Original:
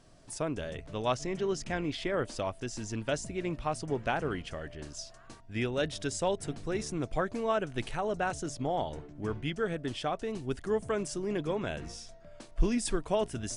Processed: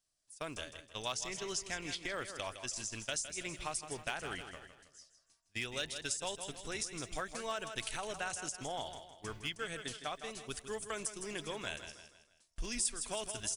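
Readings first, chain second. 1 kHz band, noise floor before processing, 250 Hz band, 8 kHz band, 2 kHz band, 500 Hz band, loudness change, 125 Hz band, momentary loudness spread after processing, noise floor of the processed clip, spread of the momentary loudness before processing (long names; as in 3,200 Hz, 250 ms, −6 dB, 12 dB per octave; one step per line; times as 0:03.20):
−8.0 dB, −53 dBFS, −14.0 dB, +3.5 dB, −2.5 dB, −11.5 dB, −6.0 dB, −13.5 dB, 10 LU, −74 dBFS, 10 LU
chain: low-shelf EQ 130 Hz +11.5 dB
noise gate −32 dBFS, range −25 dB
in parallel at −8 dB: hard clipping −20.5 dBFS, distortion −6 dB
on the sum: first-order pre-emphasis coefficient 0.97
on a send: repeating echo 160 ms, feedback 42%, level −11 dB
on the sum: downward compressor 2.5 to 1, threshold −45 dBFS, peak gain reduction 11.5 dB
level +9 dB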